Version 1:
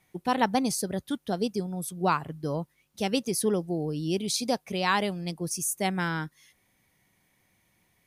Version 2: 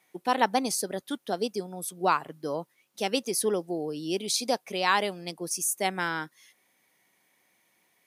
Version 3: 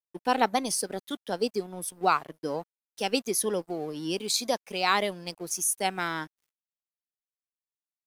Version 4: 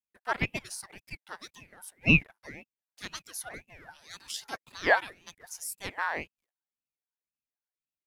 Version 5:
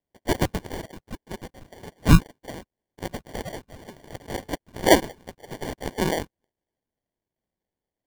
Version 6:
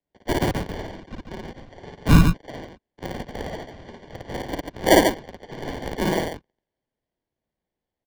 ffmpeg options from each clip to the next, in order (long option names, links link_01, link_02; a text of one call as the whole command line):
ffmpeg -i in.wav -af "highpass=320,volume=1.5dB" out.wav
ffmpeg -i in.wav -af "afftfilt=real='re*pow(10,7/40*sin(2*PI*(1.2*log(max(b,1)*sr/1024/100)/log(2)-(-1.8)*(pts-256)/sr)))':imag='im*pow(10,7/40*sin(2*PI*(1.2*log(max(b,1)*sr/1024/100)/log(2)-(-1.8)*(pts-256)/sr)))':win_size=1024:overlap=0.75,aeval=exprs='sgn(val(0))*max(abs(val(0))-0.00299,0)':channel_layout=same" out.wav
ffmpeg -i in.wav -af "highpass=frequency=1200:width_type=q:width=12,aeval=exprs='val(0)*sin(2*PI*850*n/s+850*0.7/1.9*sin(2*PI*1.9*n/s))':channel_layout=same,volume=-8dB" out.wav
ffmpeg -i in.wav -af "acrusher=samples=34:mix=1:aa=0.000001,volume=7dB" out.wav
ffmpeg -i in.wav -filter_complex "[0:a]acrossover=split=170|1200|5600[link_01][link_02][link_03][link_04];[link_04]aeval=exprs='sgn(val(0))*max(abs(val(0))-0.0168,0)':channel_layout=same[link_05];[link_01][link_02][link_03][link_05]amix=inputs=4:normalize=0,aecho=1:1:55.39|142.9:0.891|0.562,volume=-1dB" out.wav